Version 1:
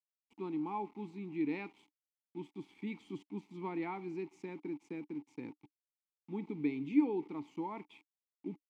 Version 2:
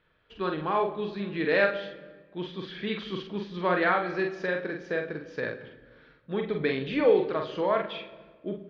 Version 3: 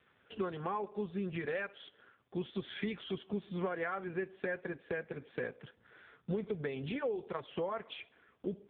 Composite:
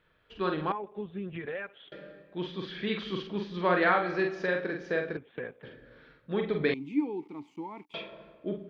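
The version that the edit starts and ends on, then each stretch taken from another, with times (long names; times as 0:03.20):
2
0:00.72–0:01.92: punch in from 3
0:05.17–0:05.63: punch in from 3
0:06.74–0:07.94: punch in from 1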